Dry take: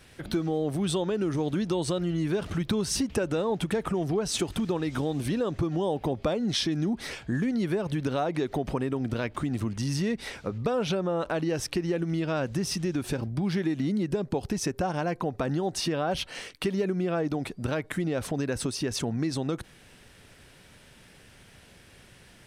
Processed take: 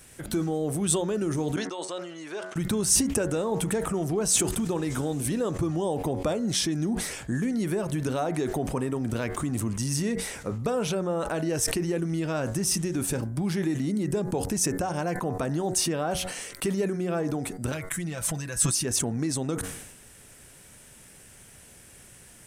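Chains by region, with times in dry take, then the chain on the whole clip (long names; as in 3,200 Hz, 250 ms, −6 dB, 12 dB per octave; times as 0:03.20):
0:01.56–0:02.56: noise gate −32 dBFS, range −20 dB + band-pass filter 590–5,500 Hz
0:17.72–0:18.85: parametric band 390 Hz −12.5 dB 2.1 octaves + comb filter 6 ms, depth 60%
whole clip: high shelf with overshoot 5,800 Hz +10 dB, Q 1.5; hum removal 92.3 Hz, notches 23; level that may fall only so fast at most 55 dB per second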